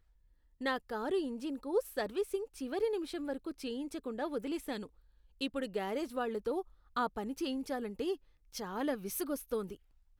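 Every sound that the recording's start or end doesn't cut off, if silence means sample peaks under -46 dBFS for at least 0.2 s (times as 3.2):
0.61–4.86
5.41–6.62
6.96–8.16
8.54–9.75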